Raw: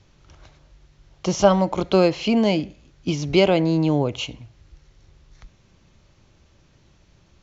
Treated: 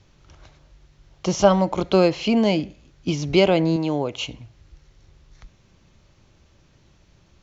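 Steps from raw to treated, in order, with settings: 3.76–4.20 s: bass shelf 200 Hz -11.5 dB

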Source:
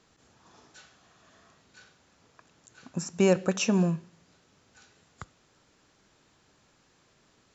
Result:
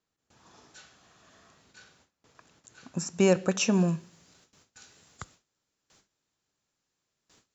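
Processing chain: gate with hold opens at -52 dBFS; treble shelf 4.3 kHz +3 dB, from 3.88 s +11 dB

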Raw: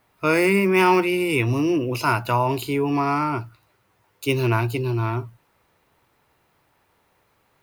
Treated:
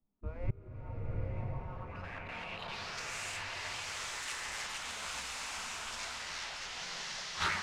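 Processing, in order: block-companded coder 3-bit; on a send: repeats whose band climbs or falls 283 ms, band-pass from 490 Hz, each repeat 0.7 oct, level -5 dB; on the sum: low-pass sweep 110 Hz -> 7.5 kHz, 0.38–3.16 s; ever faster or slower copies 283 ms, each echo -5 st, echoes 2; dynamic bell 110 Hz, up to +5 dB, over -36 dBFS, Q 3.9; spectral gate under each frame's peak -15 dB weak; reverse; compression, threshold -29 dBFS, peak gain reduction 9 dB; reverse; peaking EQ 350 Hz -13.5 dB 2.2 oct; inverted gate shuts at -37 dBFS, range -33 dB; level rider gain up to 14 dB; saturation -31 dBFS, distortion -20 dB; swelling reverb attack 1000 ms, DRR -2 dB; trim +9.5 dB

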